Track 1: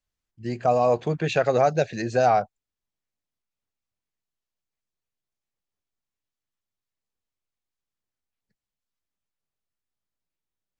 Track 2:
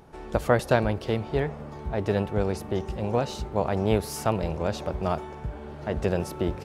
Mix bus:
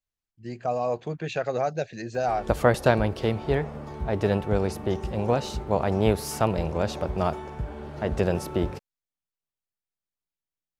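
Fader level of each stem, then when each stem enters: −6.5, +1.5 decibels; 0.00, 2.15 seconds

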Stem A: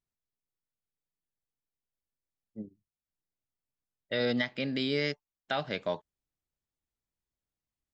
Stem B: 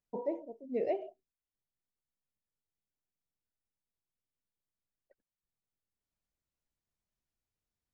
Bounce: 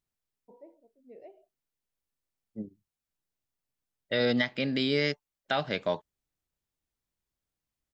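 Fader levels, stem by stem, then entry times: +3.0, −17.5 decibels; 0.00, 0.35 seconds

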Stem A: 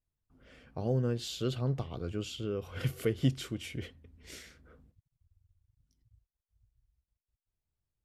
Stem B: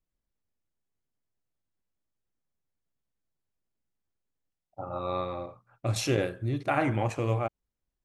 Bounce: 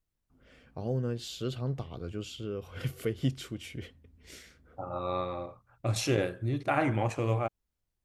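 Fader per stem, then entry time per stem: −1.5, −1.0 decibels; 0.00, 0.00 seconds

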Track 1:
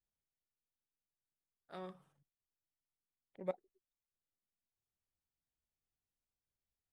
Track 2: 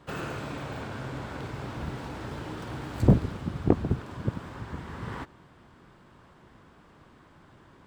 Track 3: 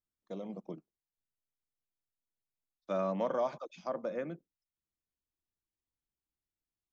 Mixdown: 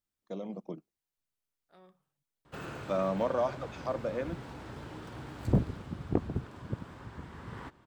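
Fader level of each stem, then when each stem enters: −11.0, −7.0, +2.5 decibels; 0.00, 2.45, 0.00 seconds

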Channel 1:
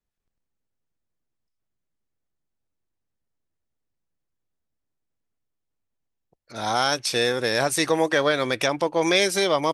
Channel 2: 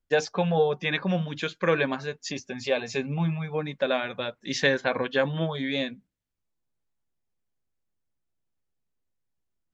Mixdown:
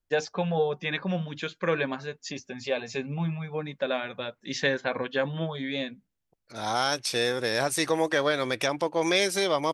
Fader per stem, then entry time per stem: −4.0, −3.0 decibels; 0.00, 0.00 seconds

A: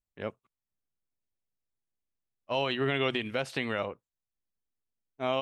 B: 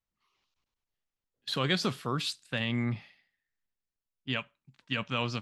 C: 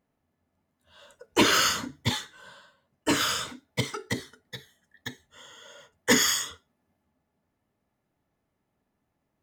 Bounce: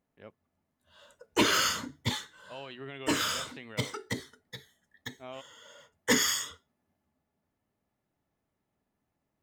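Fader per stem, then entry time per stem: −14.0 dB, muted, −4.0 dB; 0.00 s, muted, 0.00 s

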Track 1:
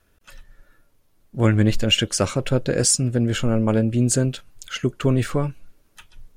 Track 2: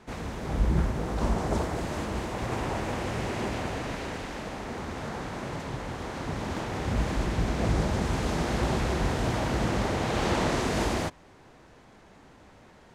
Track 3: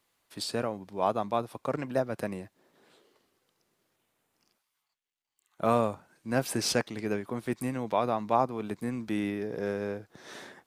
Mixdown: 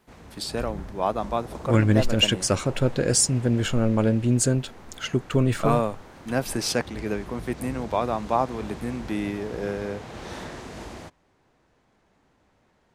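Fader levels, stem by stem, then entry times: −2.0, −11.5, +2.5 decibels; 0.30, 0.00, 0.00 seconds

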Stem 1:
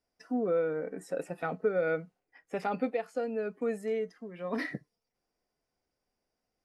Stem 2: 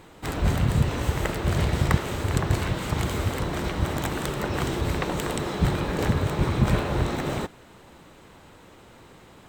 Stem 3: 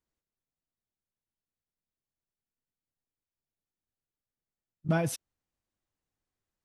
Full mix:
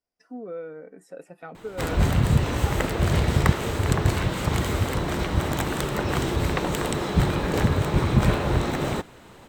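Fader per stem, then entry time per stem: −6.5 dB, +2.0 dB, muted; 0.00 s, 1.55 s, muted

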